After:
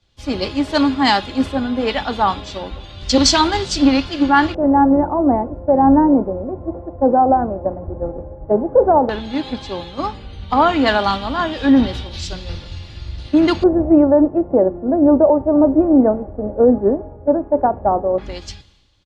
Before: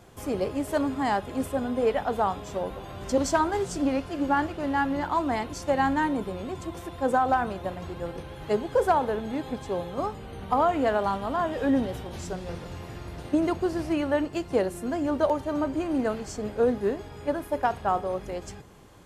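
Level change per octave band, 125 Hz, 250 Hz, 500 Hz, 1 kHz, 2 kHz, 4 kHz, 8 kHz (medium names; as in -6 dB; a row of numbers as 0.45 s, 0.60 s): +8.5 dB, +13.0 dB, +10.0 dB, +9.0 dB, +8.5 dB, +18.5 dB, +11.5 dB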